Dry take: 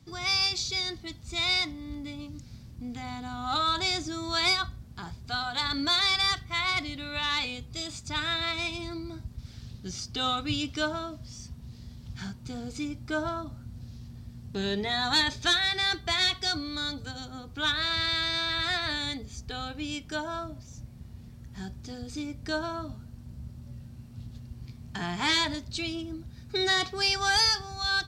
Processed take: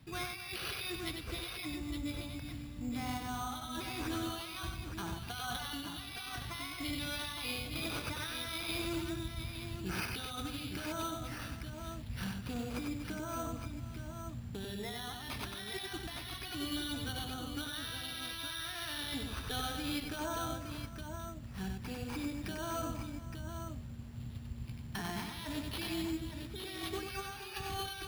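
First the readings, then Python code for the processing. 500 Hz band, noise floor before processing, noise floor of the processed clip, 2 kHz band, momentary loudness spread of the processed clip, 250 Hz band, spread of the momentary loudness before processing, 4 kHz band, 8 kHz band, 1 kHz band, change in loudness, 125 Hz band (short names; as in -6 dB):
-7.0 dB, -48 dBFS, -46 dBFS, -12.0 dB, 7 LU, -4.0 dB, 20 LU, -13.5 dB, -7.0 dB, -9.5 dB, -11.5 dB, -3.0 dB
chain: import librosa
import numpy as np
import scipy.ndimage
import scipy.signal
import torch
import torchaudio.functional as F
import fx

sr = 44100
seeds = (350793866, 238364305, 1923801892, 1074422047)

p1 = fx.high_shelf(x, sr, hz=9300.0, db=9.5)
p2 = fx.over_compress(p1, sr, threshold_db=-35.0, ratio=-1.0)
p3 = p2 + fx.echo_multitap(p2, sr, ms=(95, 245, 530, 864), db=(-4.5, -12.0, -17.0, -7.0), dry=0)
p4 = np.repeat(p3[::6], 6)[:len(p3)]
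y = p4 * librosa.db_to_amplitude(-7.0)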